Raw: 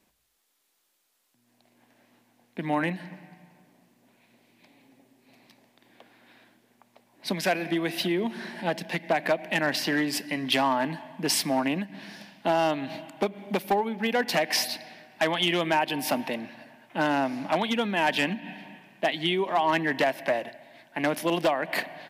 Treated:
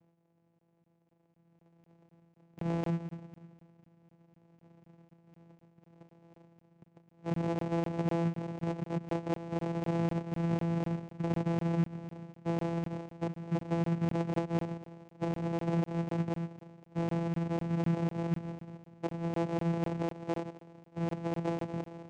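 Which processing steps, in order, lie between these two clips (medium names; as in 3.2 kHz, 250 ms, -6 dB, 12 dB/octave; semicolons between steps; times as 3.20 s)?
peak limiter -22.5 dBFS, peak gain reduction 7.5 dB; treble shelf 3.4 kHz +3.5 dB, from 14.66 s -4.5 dB; sample-rate reducer 1.1 kHz, jitter 0%; vocoder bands 4, saw 168 Hz; crackling interface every 0.25 s, samples 1024, zero, from 0.59 s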